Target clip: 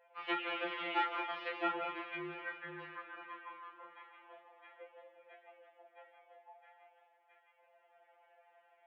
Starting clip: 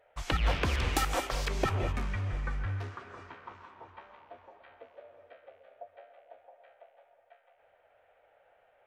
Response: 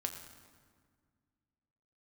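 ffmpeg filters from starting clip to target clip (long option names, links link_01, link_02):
-filter_complex "[0:a]asettb=1/sr,asplit=3[link_01][link_02][link_03];[link_01]atrim=end=1.414[link_04];[link_02]atrim=start=1.41:end=2.57,asetpts=PTS-STARTPTS,afade=type=in:duration=0.004:curve=qsin,afade=type=out:start_time=1.156:duration=0.004:curve=qsin,aeval=exprs='val(0)+0.5*0.0126*sgn(val(0))':channel_layout=same[link_05];[link_03]atrim=start=2.566[link_06];[link_04][link_05]acrossfade=duration=0.004:curve1=hsin:curve2=qsin[link_07];[link_07][link_06]acrossfade=duration=0.004:curve1=qsin:curve2=hsin,flanger=delay=19.5:depth=7.9:speed=0.39,asplit=2[link_08][link_09];[1:a]atrim=start_sample=2205,asetrate=88200,aresample=44100[link_10];[link_09][link_10]afir=irnorm=-1:irlink=0,volume=-12.5dB[link_11];[link_08][link_11]amix=inputs=2:normalize=0,highpass=frequency=230:width_type=q:width=0.5412,highpass=frequency=230:width_type=q:width=1.307,lowpass=frequency=3200:width_type=q:width=0.5176,lowpass=frequency=3200:width_type=q:width=0.7071,lowpass=frequency=3200:width_type=q:width=1.932,afreqshift=62,asplit=2[link_12][link_13];[link_13]acompressor=threshold=-44dB:ratio=6,volume=-1dB[link_14];[link_12][link_14]amix=inputs=2:normalize=0,afftfilt=real='re*2.83*eq(mod(b,8),0)':imag='im*2.83*eq(mod(b,8),0)':win_size=2048:overlap=0.75,volume=-2dB"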